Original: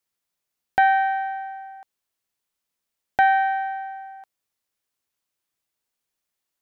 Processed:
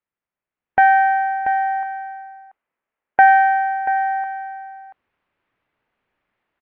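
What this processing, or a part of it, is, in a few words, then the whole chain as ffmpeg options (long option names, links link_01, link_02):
action camera in a waterproof case: -filter_complex "[0:a]asettb=1/sr,asplit=3[link_01][link_02][link_03];[link_01]atrim=end=1.534[link_04];[link_02]atrim=start=1.53:end=3.28,asetpts=PTS-STARTPTS,afade=type=in:duration=0.004:curve=qsin,afade=type=out:start_time=1.746:duration=0.004:curve=qsin,bass=frequency=250:gain=-9,treble=frequency=4000:gain=-14[link_05];[link_03]atrim=start=3.276[link_06];[link_04][link_05]acrossfade=duration=0.004:curve1=hsin:curve2=qsin[link_07];[link_07][link_06]acrossfade=duration=0.004:curve1=qsin:curve2=hsin,lowpass=frequency=2400:width=0.5412,lowpass=frequency=2400:width=1.3066,aecho=1:1:685:0.211,dynaudnorm=framelen=140:gausssize=11:maxgain=16.5dB,volume=-1dB" -ar 16000 -c:a aac -b:a 48k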